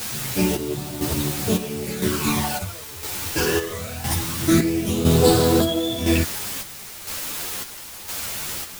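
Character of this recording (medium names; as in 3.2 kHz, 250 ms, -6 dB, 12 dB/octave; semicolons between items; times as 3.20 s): phasing stages 12, 0.23 Hz, lowest notch 200–2200 Hz; a quantiser's noise floor 6-bit, dither triangular; chopped level 0.99 Hz, depth 60%, duty 55%; a shimmering, thickened sound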